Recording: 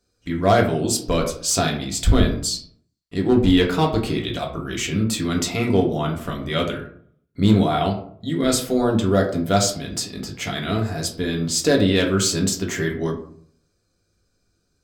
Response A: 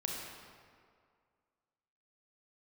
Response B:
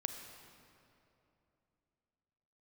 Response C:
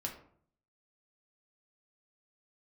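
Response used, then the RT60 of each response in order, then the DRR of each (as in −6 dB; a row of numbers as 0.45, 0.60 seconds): C; 2.1, 2.9, 0.60 seconds; −1.5, 5.5, 0.0 decibels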